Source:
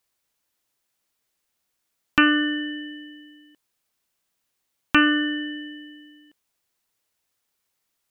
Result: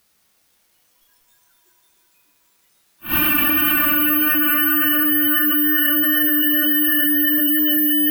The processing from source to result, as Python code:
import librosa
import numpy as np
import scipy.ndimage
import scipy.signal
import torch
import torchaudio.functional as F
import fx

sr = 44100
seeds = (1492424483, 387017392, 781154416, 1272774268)

y = fx.paulstretch(x, sr, seeds[0], factor=6.7, window_s=0.25, from_s=1.6)
y = fx.wow_flutter(y, sr, seeds[1], rate_hz=2.1, depth_cents=18.0)
y = fx.noise_reduce_blind(y, sr, reduce_db=16)
y = fx.rev_plate(y, sr, seeds[2], rt60_s=4.9, hf_ratio=0.75, predelay_ms=0, drr_db=4.0)
y = (np.kron(scipy.signal.resample_poly(y, 1, 3), np.eye(3)[0]) * 3)[:len(y)]
y = fx.env_flatten(y, sr, amount_pct=100)
y = y * librosa.db_to_amplitude(-10.0)